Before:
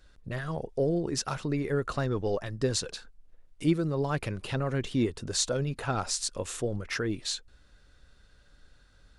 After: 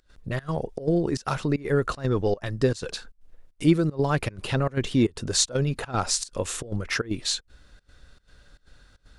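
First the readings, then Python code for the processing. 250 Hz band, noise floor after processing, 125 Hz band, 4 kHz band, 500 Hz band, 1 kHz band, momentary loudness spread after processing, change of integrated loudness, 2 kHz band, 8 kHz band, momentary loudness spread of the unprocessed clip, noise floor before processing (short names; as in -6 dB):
+5.5 dB, -64 dBFS, +5.0 dB, +4.5 dB, +4.0 dB, +4.5 dB, 8 LU, +4.5 dB, +4.5 dB, +4.5 dB, 6 LU, -60 dBFS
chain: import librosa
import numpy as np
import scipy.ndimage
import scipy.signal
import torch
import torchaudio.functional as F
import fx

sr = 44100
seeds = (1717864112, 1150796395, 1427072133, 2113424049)

y = fx.volume_shaper(x, sr, bpm=154, per_beat=1, depth_db=-21, release_ms=93.0, shape='slow start')
y = F.gain(torch.from_numpy(y), 6.0).numpy()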